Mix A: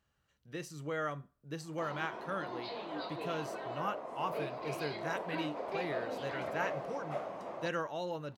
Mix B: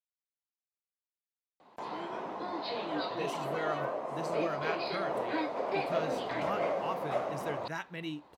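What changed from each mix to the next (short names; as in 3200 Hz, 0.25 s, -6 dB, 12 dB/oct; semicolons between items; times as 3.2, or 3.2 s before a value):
speech: entry +2.65 s; background +6.0 dB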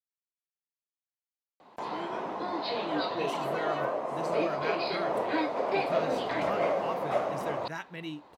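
background +4.0 dB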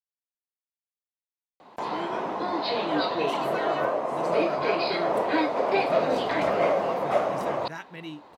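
background +5.0 dB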